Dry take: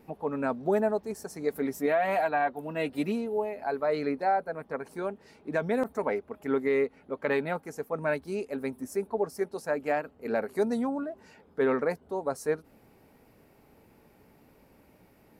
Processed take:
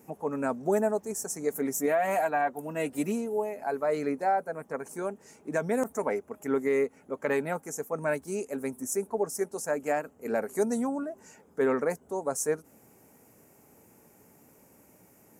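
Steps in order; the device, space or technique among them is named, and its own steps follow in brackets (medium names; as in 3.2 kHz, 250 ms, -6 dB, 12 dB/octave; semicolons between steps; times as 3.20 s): budget condenser microphone (high-pass 94 Hz; resonant high shelf 5.3 kHz +9 dB, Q 3)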